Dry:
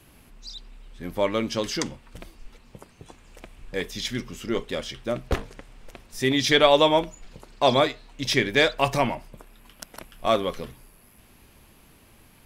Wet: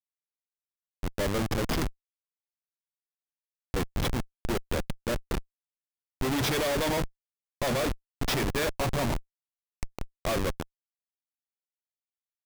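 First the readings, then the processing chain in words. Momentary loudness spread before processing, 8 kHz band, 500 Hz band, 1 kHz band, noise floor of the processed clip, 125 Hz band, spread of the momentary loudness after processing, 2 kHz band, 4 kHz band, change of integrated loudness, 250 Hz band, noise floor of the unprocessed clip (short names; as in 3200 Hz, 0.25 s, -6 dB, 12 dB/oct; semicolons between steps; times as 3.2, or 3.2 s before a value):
22 LU, -1.5 dB, -8.0 dB, -8.5 dB, under -85 dBFS, +0.5 dB, 12 LU, -7.0 dB, -9.0 dB, -6.5 dB, -4.0 dB, -55 dBFS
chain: Schmitt trigger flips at -25.5 dBFS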